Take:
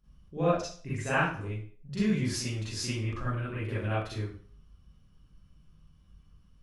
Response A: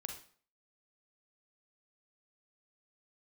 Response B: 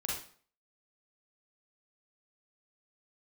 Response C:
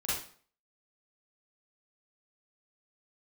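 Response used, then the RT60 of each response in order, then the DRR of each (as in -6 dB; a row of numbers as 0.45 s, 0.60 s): C; 0.50 s, 0.50 s, 0.50 s; 3.0 dB, -4.5 dB, -10.0 dB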